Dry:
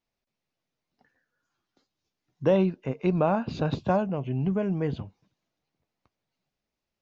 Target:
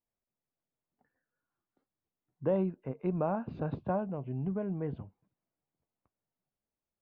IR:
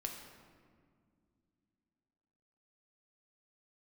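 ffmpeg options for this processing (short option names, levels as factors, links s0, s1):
-af "lowpass=1500,volume=0.422"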